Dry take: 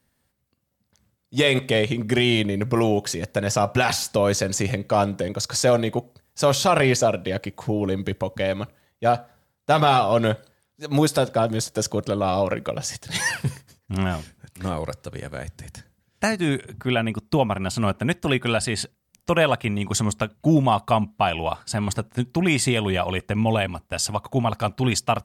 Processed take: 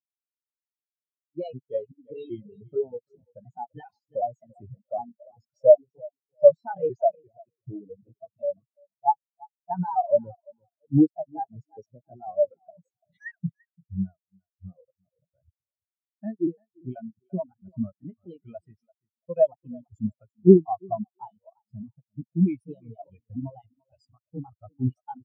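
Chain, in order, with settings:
pitch shifter gated in a rhythm +3 semitones, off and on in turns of 383 ms
repeating echo 340 ms, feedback 43%, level −8 dB
automatic gain control gain up to 6 dB
reverb reduction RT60 1 s
in parallel at −2 dB: brickwall limiter −12.5 dBFS, peak gain reduction 9.5 dB
on the sum: every bin expanded away from the loudest bin 4 to 1
level −1 dB

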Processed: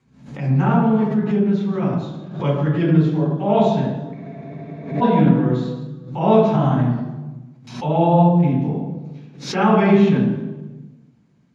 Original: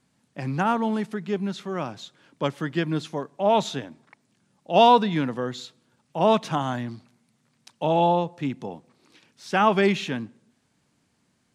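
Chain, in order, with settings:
high-shelf EQ 3,600 Hz −12 dB
convolution reverb RT60 1.2 s, pre-delay 3 ms, DRR −7 dB
dynamic equaliser 8,200 Hz, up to −7 dB, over −42 dBFS, Q 1.1
frozen spectrum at 0:04.15, 0.88 s
background raised ahead of every attack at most 100 dB per second
level −10 dB

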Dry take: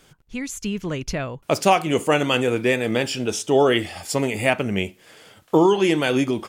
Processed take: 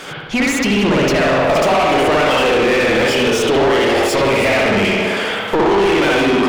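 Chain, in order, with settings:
on a send: delay with a band-pass on its return 83 ms, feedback 62%, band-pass 540 Hz, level −9.5 dB
on the sum: downward compressor 12 to 1, threshold −27 dBFS, peak gain reduction 16.5 dB
spring reverb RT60 1.1 s, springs 60 ms, chirp 20 ms, DRR −4 dB
mid-hump overdrive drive 29 dB, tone 2,200 Hz, clips at −12.5 dBFS
level +6 dB

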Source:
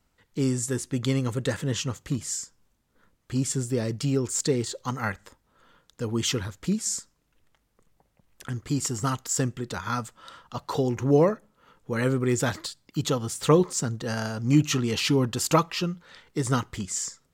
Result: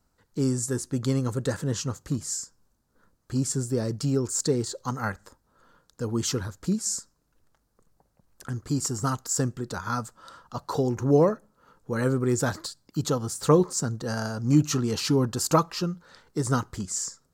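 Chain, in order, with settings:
flat-topped bell 2,600 Hz −9 dB 1.1 octaves

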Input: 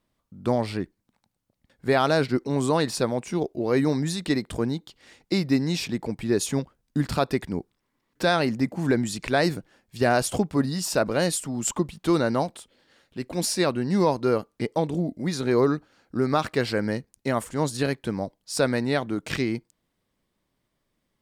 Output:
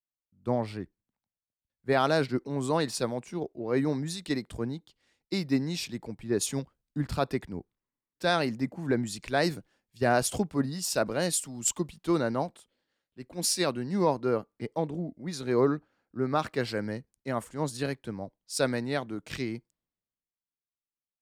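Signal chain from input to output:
multiband upward and downward expander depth 70%
level −5.5 dB

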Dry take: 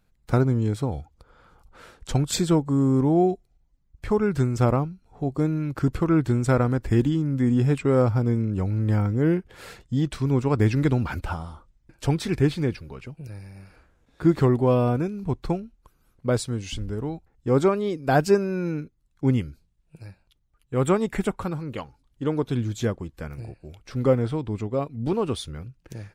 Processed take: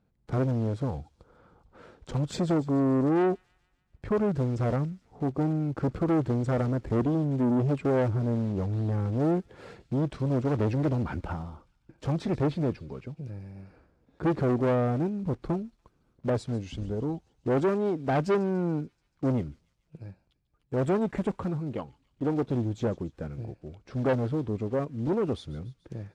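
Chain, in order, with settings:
one scale factor per block 5 bits
low-pass filter 6,600 Hz 12 dB per octave
tilt shelving filter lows +8 dB
tube saturation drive 17 dB, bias 0.35
high-pass filter 160 Hz 6 dB per octave
delay with a high-pass on its return 144 ms, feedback 58%, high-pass 3,500 Hz, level −15 dB
level −2.5 dB

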